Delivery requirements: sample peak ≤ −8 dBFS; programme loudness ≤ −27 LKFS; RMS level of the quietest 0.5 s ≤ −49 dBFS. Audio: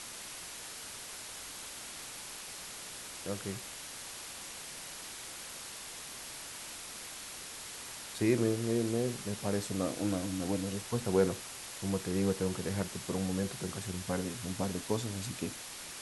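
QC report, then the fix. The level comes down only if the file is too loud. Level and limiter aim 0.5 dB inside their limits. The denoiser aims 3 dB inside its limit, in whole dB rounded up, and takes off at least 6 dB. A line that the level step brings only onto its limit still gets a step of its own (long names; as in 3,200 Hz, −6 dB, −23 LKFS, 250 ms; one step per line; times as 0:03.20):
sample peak −15.0 dBFS: in spec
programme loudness −36.5 LKFS: in spec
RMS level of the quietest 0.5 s −45 dBFS: out of spec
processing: broadband denoise 7 dB, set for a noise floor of −45 dBFS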